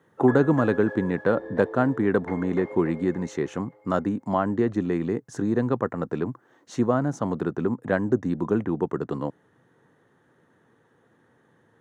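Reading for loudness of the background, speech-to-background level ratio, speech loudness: -39.0 LUFS, 13.5 dB, -25.5 LUFS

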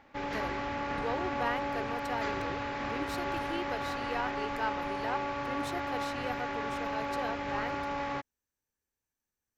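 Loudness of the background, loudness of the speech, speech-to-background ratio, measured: -35.0 LUFS, -39.5 LUFS, -4.5 dB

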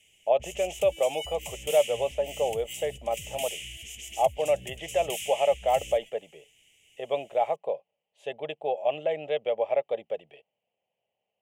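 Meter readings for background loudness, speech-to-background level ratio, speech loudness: -38.5 LUFS, 9.5 dB, -29.0 LUFS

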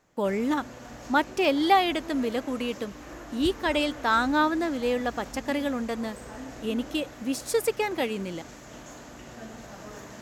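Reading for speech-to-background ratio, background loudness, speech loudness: 15.5 dB, -42.5 LUFS, -27.0 LUFS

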